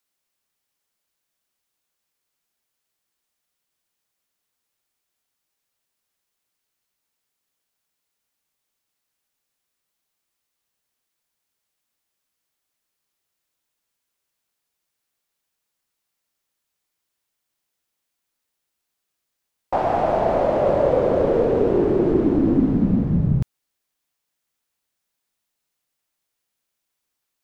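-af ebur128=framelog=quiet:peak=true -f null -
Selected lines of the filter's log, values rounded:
Integrated loudness:
  I:         -19.5 LUFS
  Threshold: -29.6 LUFS
Loudness range:
  LRA:        10.6 LU
  Threshold: -41.7 LUFS
  LRA low:   -29.5 LUFS
  LRA high:  -18.9 LUFS
True peak:
  Peak:       -5.6 dBFS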